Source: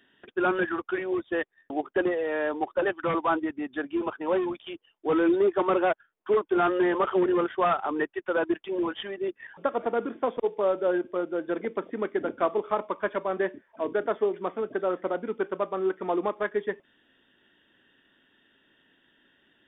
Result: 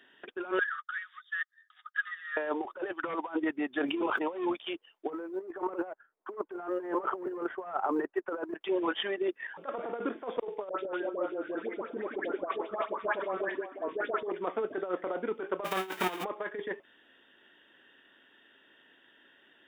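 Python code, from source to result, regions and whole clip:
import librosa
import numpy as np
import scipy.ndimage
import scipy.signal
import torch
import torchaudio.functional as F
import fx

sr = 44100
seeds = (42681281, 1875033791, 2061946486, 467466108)

y = fx.chain(x, sr, fx.cheby_ripple_highpass(hz=1200.0, ripple_db=6),
    fx.peak_eq(hz=2500.0, db=-13.0, octaves=0.38), at=(0.59, 2.37))
y = fx.chain(y, sr, fx.highpass(hz=45.0, slope=12),
    fx.peak_eq(hz=1600.0, db=-6.0, octaves=0.38),
    fx.sustainer(db_per_s=40.0), at=(3.78, 4.48))
y = fx.chain(y, sr, fx.lowpass(hz=1300.0, slope=12),
    fx.quant_float(bits=6), at=(5.1, 8.61))
y = fx.chain(y, sr, fx.level_steps(step_db=12),
    fx.dispersion(late='highs', ms=111.0, hz=1400.0),
    fx.echo_stepped(ms=171, hz=300.0, octaves=1.4, feedback_pct=70, wet_db=-5.5), at=(10.69, 14.32))
y = fx.envelope_flatten(y, sr, power=0.3, at=(15.64, 16.23), fade=0.02)
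y = fx.notch(y, sr, hz=3400.0, q=23.0, at=(15.64, 16.23), fade=0.02)
y = fx.over_compress(y, sr, threshold_db=-33.0, ratio=-0.5, at=(15.64, 16.23), fade=0.02)
y = fx.bass_treble(y, sr, bass_db=-13, treble_db=-5)
y = fx.over_compress(y, sr, threshold_db=-31.0, ratio=-0.5)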